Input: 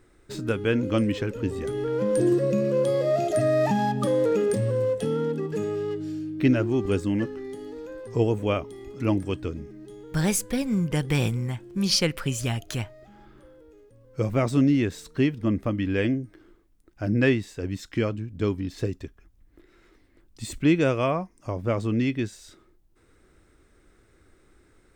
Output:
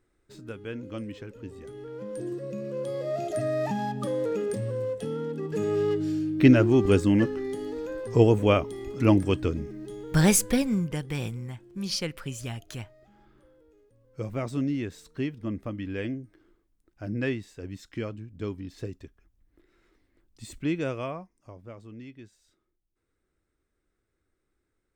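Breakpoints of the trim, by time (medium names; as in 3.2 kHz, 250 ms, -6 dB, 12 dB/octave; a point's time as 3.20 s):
2.37 s -13 dB
3.27 s -6 dB
5.30 s -6 dB
5.80 s +4 dB
10.51 s +4 dB
11.04 s -8 dB
20.97 s -8 dB
21.77 s -19.5 dB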